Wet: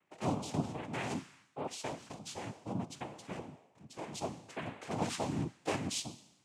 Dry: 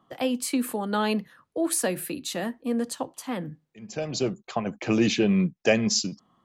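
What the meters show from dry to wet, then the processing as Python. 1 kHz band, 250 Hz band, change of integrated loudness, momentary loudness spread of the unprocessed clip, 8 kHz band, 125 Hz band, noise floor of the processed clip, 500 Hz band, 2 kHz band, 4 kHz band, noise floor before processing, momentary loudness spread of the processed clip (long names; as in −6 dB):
−7.0 dB, −14.5 dB, −13.0 dB, 12 LU, −14.0 dB, −8.0 dB, −69 dBFS, −14.0 dB, −13.0 dB, −12.5 dB, −74 dBFS, 11 LU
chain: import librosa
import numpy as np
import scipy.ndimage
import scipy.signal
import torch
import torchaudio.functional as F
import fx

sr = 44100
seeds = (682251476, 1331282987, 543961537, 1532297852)

y = fx.comb_fb(x, sr, f0_hz=260.0, decay_s=0.92, harmonics='all', damping=0.0, mix_pct=80)
y = fx.noise_vocoder(y, sr, seeds[0], bands=4)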